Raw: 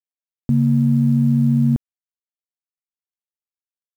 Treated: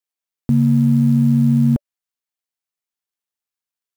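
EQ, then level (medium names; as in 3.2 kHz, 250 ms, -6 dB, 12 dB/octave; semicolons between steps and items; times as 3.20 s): bass shelf 300 Hz -6 dB; band-stop 580 Hz, Q 12; +6.0 dB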